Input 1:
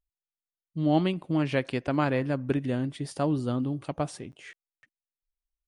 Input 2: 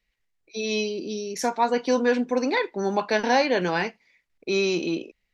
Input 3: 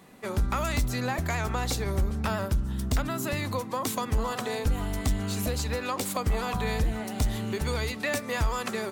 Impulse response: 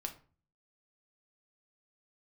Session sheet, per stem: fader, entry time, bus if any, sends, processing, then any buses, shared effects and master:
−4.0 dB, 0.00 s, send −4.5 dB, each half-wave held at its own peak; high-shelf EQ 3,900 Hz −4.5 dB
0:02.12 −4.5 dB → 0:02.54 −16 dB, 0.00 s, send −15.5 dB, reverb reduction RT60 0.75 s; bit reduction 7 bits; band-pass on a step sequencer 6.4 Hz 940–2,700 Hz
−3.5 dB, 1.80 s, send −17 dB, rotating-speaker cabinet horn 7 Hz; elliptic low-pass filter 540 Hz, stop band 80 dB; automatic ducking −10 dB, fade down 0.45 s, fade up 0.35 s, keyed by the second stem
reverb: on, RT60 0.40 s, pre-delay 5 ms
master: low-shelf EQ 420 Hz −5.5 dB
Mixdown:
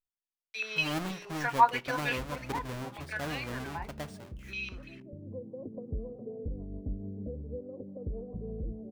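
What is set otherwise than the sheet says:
stem 1 −4.0 dB → −14.5 dB
stem 2 −4.5 dB → +6.5 dB

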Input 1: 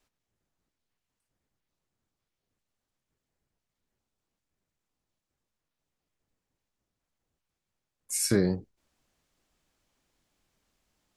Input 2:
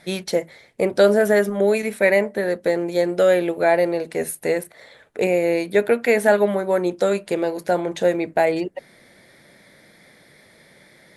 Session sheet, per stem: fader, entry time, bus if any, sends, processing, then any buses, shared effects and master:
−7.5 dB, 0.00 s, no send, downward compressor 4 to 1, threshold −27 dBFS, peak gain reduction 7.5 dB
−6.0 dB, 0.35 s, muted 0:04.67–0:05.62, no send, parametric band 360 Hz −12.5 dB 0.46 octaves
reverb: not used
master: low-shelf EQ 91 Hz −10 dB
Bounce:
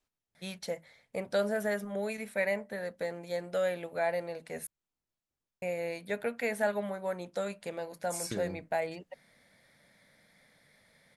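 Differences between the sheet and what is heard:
stem 2 −6.0 dB → −12.5 dB
master: missing low-shelf EQ 91 Hz −10 dB

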